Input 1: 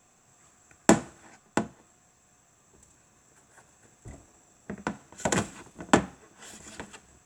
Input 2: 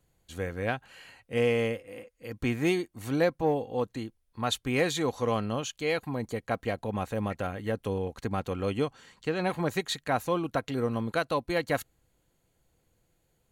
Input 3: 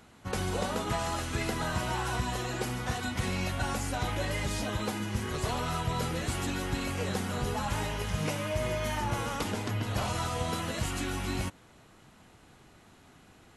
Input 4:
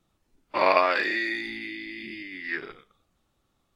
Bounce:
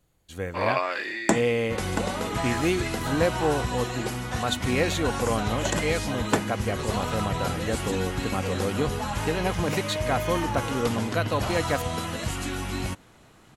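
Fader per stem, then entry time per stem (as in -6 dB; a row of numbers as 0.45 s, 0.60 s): -3.0 dB, +1.5 dB, +2.5 dB, -5.5 dB; 0.40 s, 0.00 s, 1.45 s, 0.00 s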